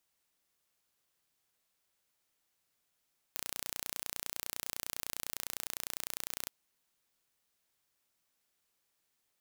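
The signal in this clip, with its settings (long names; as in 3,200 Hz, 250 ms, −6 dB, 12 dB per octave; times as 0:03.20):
impulse train 29.9 per second, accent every 0, −10 dBFS 3.14 s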